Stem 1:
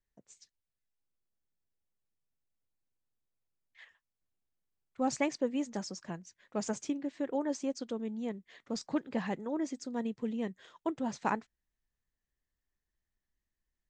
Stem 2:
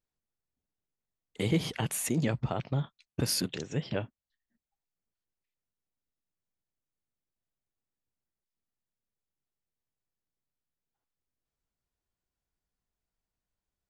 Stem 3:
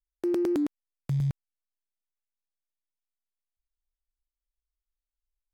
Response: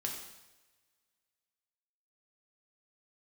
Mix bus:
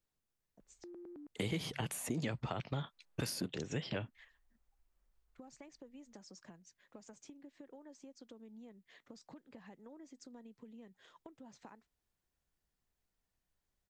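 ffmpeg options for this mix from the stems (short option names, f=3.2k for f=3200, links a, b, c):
-filter_complex "[0:a]acompressor=threshold=-41dB:ratio=6,adelay=400,volume=-5.5dB[a];[1:a]volume=1.5dB,asplit=2[b][c];[2:a]lowpass=1.5k,alimiter=level_in=8dB:limit=-24dB:level=0:latency=1,volume=-8dB,acompressor=mode=upward:threshold=-47dB:ratio=2.5,adelay=600,volume=-8.5dB[d];[c]apad=whole_len=270542[e];[d][e]sidechaincompress=threshold=-38dB:ratio=8:attack=24:release=189[f];[a][f]amix=inputs=2:normalize=0,acompressor=threshold=-52dB:ratio=3,volume=0dB[g];[b][g]amix=inputs=2:normalize=0,acrossover=split=300|1100[h][i][j];[h]acompressor=threshold=-40dB:ratio=4[k];[i]acompressor=threshold=-43dB:ratio=4[l];[j]acompressor=threshold=-43dB:ratio=4[m];[k][l][m]amix=inputs=3:normalize=0"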